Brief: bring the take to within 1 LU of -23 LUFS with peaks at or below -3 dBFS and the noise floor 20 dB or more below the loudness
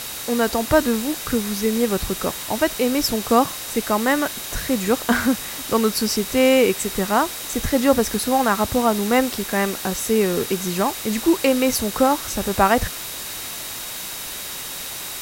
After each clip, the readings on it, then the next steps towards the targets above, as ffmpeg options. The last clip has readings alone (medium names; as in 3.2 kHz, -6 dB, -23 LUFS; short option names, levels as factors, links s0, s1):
steady tone 3.8 kHz; tone level -40 dBFS; noise floor -32 dBFS; noise floor target -41 dBFS; loudness -21.0 LUFS; peak level -2.0 dBFS; loudness target -23.0 LUFS
-> -af "bandreject=f=3800:w=30"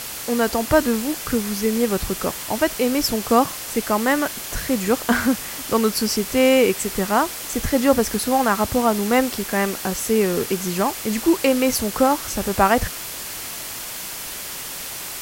steady tone not found; noise floor -32 dBFS; noise floor target -41 dBFS
-> -af "afftdn=nr=9:nf=-32"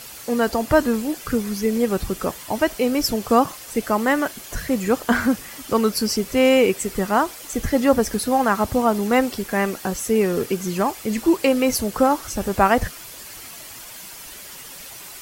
noise floor -39 dBFS; noise floor target -41 dBFS
-> -af "afftdn=nr=6:nf=-39"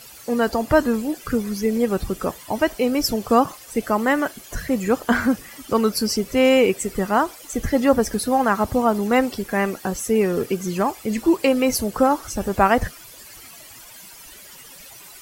noise floor -43 dBFS; loudness -21.0 LUFS; peak level -2.5 dBFS; loudness target -23.0 LUFS
-> -af "volume=0.794"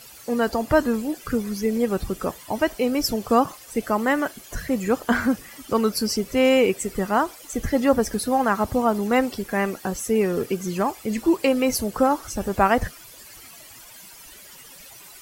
loudness -23.0 LUFS; peak level -4.5 dBFS; noise floor -45 dBFS